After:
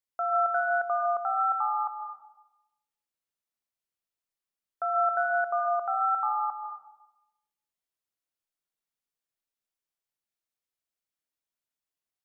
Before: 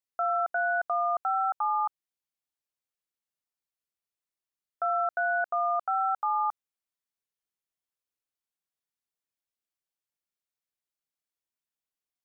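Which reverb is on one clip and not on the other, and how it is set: digital reverb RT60 0.97 s, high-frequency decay 0.45×, pre-delay 0.1 s, DRR 4.5 dB; gain -1.5 dB

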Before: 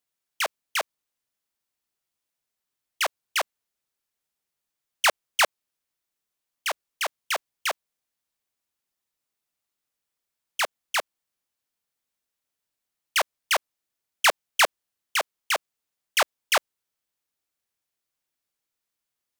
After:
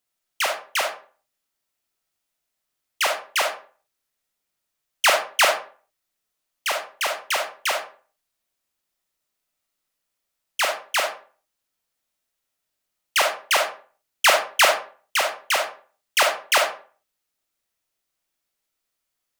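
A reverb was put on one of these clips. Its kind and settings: digital reverb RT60 0.41 s, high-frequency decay 0.7×, pre-delay 5 ms, DRR 1.5 dB; gain +2.5 dB

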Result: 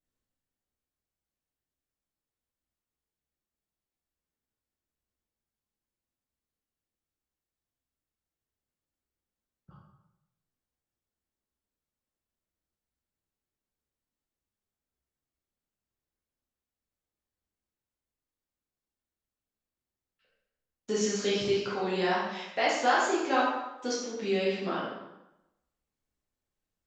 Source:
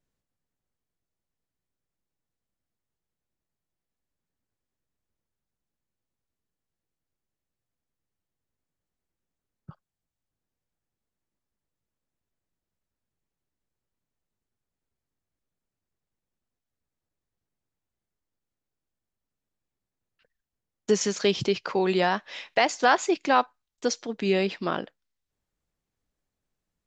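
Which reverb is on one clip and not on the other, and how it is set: plate-style reverb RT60 0.91 s, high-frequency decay 0.8×, DRR -7.5 dB; gain -11.5 dB

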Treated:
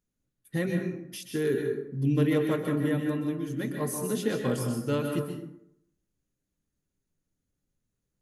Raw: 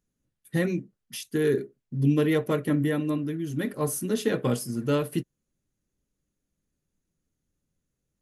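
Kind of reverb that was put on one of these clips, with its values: plate-style reverb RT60 0.76 s, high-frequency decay 0.55×, pre-delay 0.115 s, DRR 3 dB; gain -4 dB

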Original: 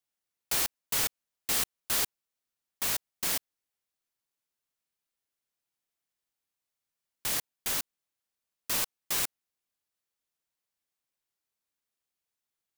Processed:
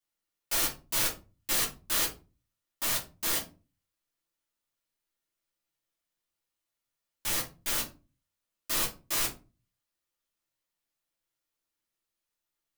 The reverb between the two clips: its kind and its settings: shoebox room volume 120 m³, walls furnished, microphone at 2.6 m; gain -5 dB

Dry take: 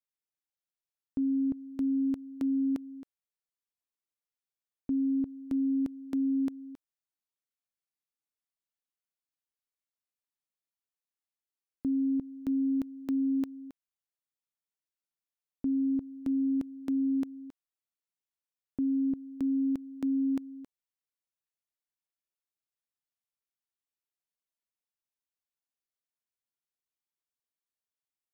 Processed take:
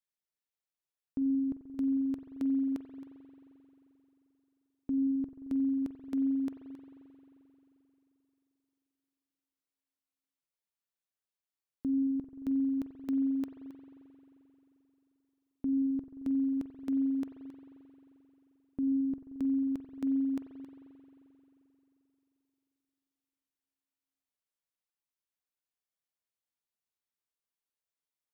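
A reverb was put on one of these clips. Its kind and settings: spring tank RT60 3.4 s, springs 44 ms, chirp 55 ms, DRR 6 dB; gain -2.5 dB

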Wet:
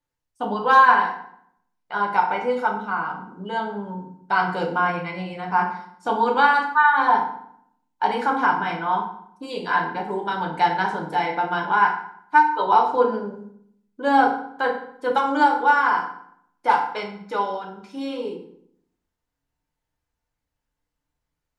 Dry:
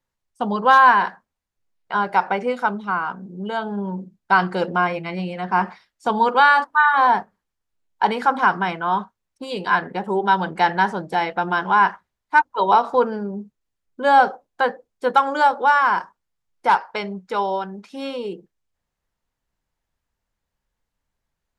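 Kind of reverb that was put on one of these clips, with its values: FDN reverb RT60 0.67 s, low-frequency decay 1.3×, high-frequency decay 0.75×, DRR -0.5 dB; gain -5.5 dB

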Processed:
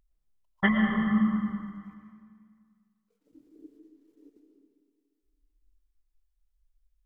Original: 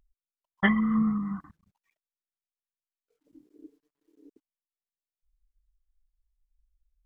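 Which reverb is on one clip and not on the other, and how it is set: digital reverb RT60 2 s, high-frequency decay 0.85×, pre-delay 70 ms, DRR 2 dB; gain -1 dB

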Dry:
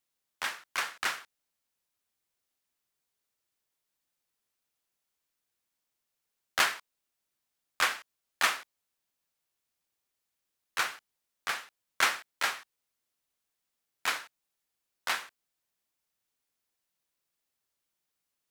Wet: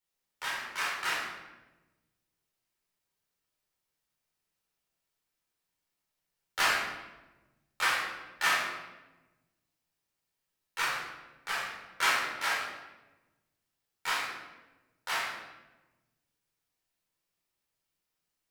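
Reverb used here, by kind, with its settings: shoebox room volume 600 m³, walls mixed, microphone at 4.4 m; gain -9 dB

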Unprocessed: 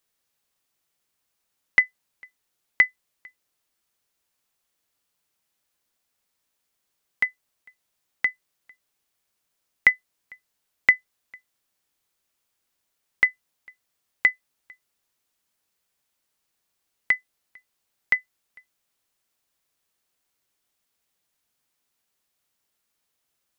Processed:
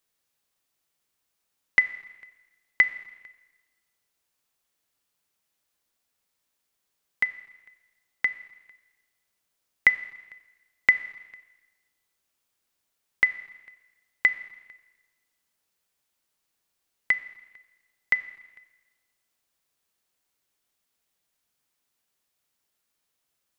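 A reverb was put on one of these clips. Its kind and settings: Schroeder reverb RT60 1.2 s, combs from 28 ms, DRR 14 dB; gain -1.5 dB

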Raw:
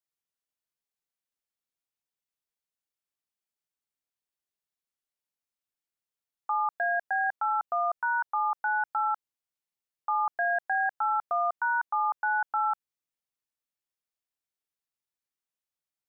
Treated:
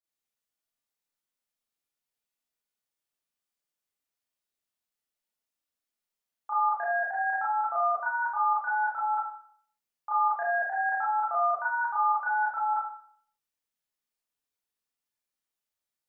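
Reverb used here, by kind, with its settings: Schroeder reverb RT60 0.57 s, combs from 26 ms, DRR -9 dB; gain -7 dB

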